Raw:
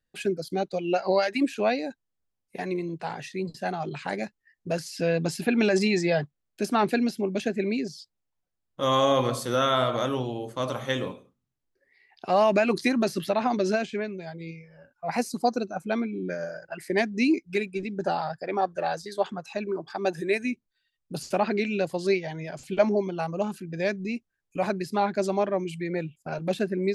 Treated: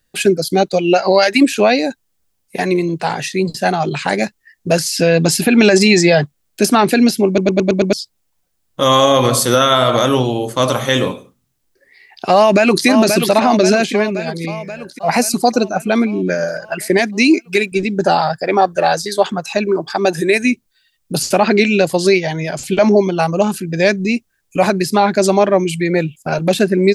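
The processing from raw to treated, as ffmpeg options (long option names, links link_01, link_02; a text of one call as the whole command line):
ffmpeg -i in.wav -filter_complex "[0:a]asplit=2[link_01][link_02];[link_02]afade=type=in:start_time=12.35:duration=0.01,afade=type=out:start_time=12.86:duration=0.01,aecho=0:1:530|1060|1590|2120|2650|3180|3710|4240|4770:0.316228|0.205548|0.133606|0.0868441|0.0564486|0.0366916|0.0238495|0.0155022|0.0100764[link_03];[link_01][link_03]amix=inputs=2:normalize=0,asettb=1/sr,asplit=3[link_04][link_05][link_06];[link_04]atrim=end=16.994[link_07];[link_05]atrim=start=16.99:end=17.72,asetpts=PTS-STARTPTS,afade=type=in:duration=0.004:curve=qsin,afade=type=out:start_time=0.726:duration=0.004:curve=qsin,highpass=frequency=270:poles=1[link_08];[link_06]atrim=start=17.716[link_09];[link_07][link_08]acrossfade=duration=0.004:curve1=hsin:curve2=qsin[link_10];[link_10][link_09]acrossfade=duration=0.004:curve1=qsin:curve2=hsin,asplit=7[link_11][link_12][link_13][link_14][link_15][link_16][link_17];[link_11]atrim=end=7.382[link_18];[link_12]atrim=start=7.268:end=7.382[link_19];[link_13]atrim=start=7.268:end=7.382[link_20];[link_14]atrim=start=7.268:end=7.382[link_21];[link_15]atrim=start=7.268:end=7.382[link_22];[link_16]atrim=start=7.268:end=7.382[link_23];[link_17]atrim=start=7.928[link_24];[link_18][link_19]acrossfade=duration=0.004:curve1=hsin:curve2=hsin[link_25];[link_25][link_20]acrossfade=duration=0.004:curve1=hsin:curve2=hsin[link_26];[link_26][link_21]acrossfade=duration=0.004:curve1=hsin:curve2=hsin[link_27];[link_27][link_22]acrossfade=duration=0.004:curve1=hsin:curve2=hsin[link_28];[link_28][link_23]acrossfade=duration=0.004:curve1=hsin:curve2=hsin[link_29];[link_29][link_24]acrossfade=duration=0.004:curve1=hsin:curve2=hsin,highshelf=frequency=4400:gain=8.5,alimiter=level_in=15dB:limit=-1dB:release=50:level=0:latency=1,volume=-1dB" out.wav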